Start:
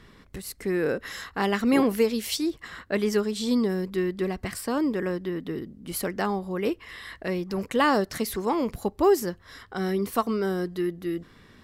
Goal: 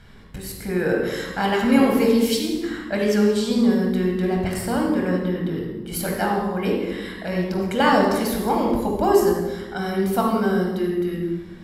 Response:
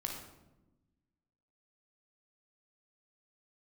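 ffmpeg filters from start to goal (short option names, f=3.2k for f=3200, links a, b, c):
-filter_complex "[1:a]atrim=start_sample=2205,asetrate=32193,aresample=44100[a];[0:a][a]afir=irnorm=-1:irlink=0,volume=2dB"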